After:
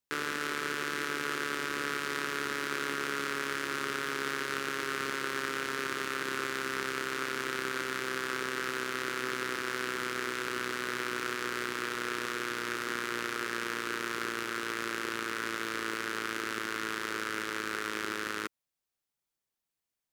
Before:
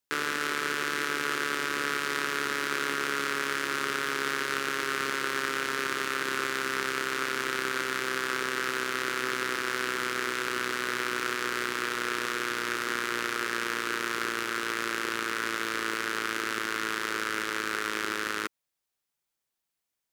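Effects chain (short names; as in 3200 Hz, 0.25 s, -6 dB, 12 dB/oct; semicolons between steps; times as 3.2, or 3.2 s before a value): low shelf 390 Hz +4 dB; gain -4.5 dB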